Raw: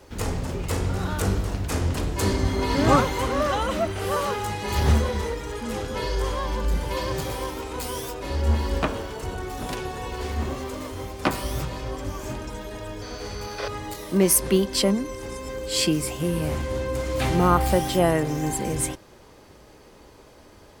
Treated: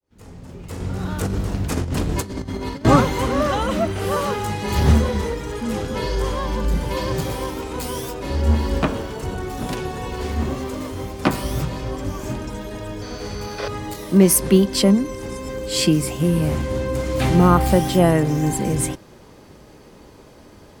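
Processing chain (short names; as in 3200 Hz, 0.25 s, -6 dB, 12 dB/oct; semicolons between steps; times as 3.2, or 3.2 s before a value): opening faded in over 2.46 s; bell 180 Hz +6.5 dB 1.7 oct; 0.8–2.85 negative-ratio compressor -25 dBFS, ratio -0.5; gain +2 dB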